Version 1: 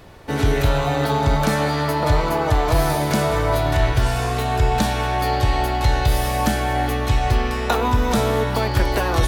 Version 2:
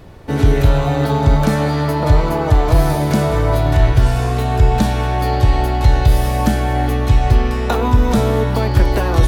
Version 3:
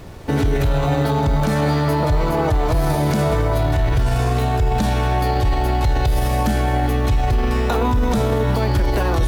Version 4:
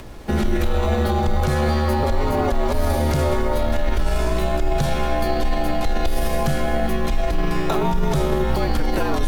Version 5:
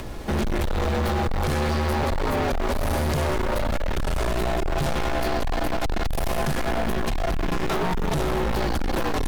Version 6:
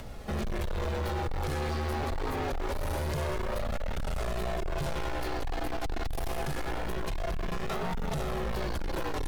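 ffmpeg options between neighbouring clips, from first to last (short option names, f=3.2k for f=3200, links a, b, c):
-af "lowshelf=f=480:g=8.5,volume=-1.5dB"
-af "alimiter=limit=-13dB:level=0:latency=1:release=28,acrusher=bits=7:mix=0:aa=0.5,volume=2.5dB"
-af "acompressor=mode=upward:threshold=-34dB:ratio=2.5,afreqshift=-67,volume=-1dB"
-af "volume=25dB,asoftclip=hard,volume=-25dB,volume=3.5dB"
-af "flanger=delay=1.4:depth=1.3:regen=-51:speed=0.25:shape=triangular,volume=-4.5dB"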